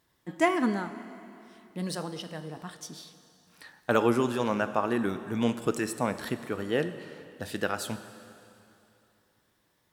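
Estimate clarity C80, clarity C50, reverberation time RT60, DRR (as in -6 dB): 12.5 dB, 12.0 dB, 2.9 s, 11.0 dB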